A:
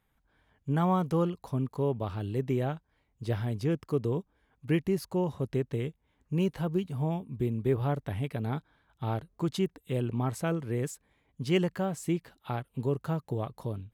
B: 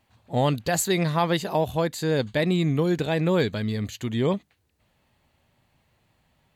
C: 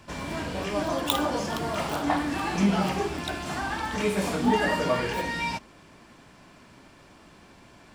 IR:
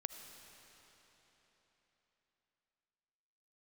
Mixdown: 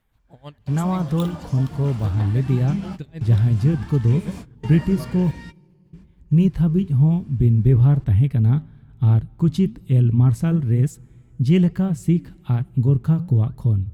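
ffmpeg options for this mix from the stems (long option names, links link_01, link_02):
-filter_complex "[0:a]lowshelf=frequency=98:gain=6.5,acontrast=83,flanger=delay=1.4:depth=8.4:regen=-85:speed=1.1:shape=triangular,volume=-2dB,asplit=3[link_01][link_02][link_03];[link_01]atrim=end=5.31,asetpts=PTS-STARTPTS,afade=type=out:start_time=5.306:duration=0.004:curve=hsin[link_04];[link_02]atrim=start=5.31:end=5.93,asetpts=PTS-STARTPTS,volume=0[link_05];[link_03]atrim=start=5.93,asetpts=PTS-STARTPTS,afade=type=in:duration=0.004:curve=hsin[link_06];[link_04][link_05][link_06]concat=n=3:v=0:a=1,asplit=3[link_07][link_08][link_09];[link_08]volume=-18dB[link_10];[1:a]alimiter=limit=-17dB:level=0:latency=1:release=129,aeval=exprs='val(0)*pow(10,-29*(0.5-0.5*cos(2*PI*6.3*n/s))/20)':channel_layout=same,volume=-10.5dB,asplit=2[link_11][link_12];[link_12]volume=-17.5dB[link_13];[2:a]acompressor=mode=upward:threshold=-44dB:ratio=2.5,adelay=100,volume=-11.5dB[link_14];[link_09]apad=whole_len=354579[link_15];[link_14][link_15]sidechaingate=range=-33dB:threshold=-56dB:ratio=16:detection=peak[link_16];[3:a]atrim=start_sample=2205[link_17];[link_10][link_13]amix=inputs=2:normalize=0[link_18];[link_18][link_17]afir=irnorm=-1:irlink=0[link_19];[link_07][link_11][link_16][link_19]amix=inputs=4:normalize=0,asubboost=boost=6.5:cutoff=210"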